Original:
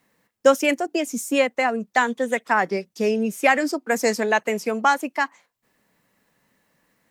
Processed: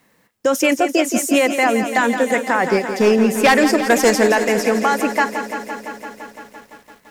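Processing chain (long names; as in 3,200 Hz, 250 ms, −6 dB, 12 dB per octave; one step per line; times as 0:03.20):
0:02.63–0:04.28: hard clipping −16.5 dBFS, distortion −16 dB
boost into a limiter +14.5 dB
feedback echo at a low word length 170 ms, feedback 80%, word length 7 bits, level −10 dB
level −6.5 dB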